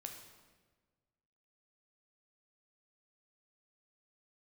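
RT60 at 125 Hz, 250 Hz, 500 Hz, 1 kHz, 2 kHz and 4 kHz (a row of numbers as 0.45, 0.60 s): 1.9, 1.6, 1.5, 1.3, 1.2, 1.1 s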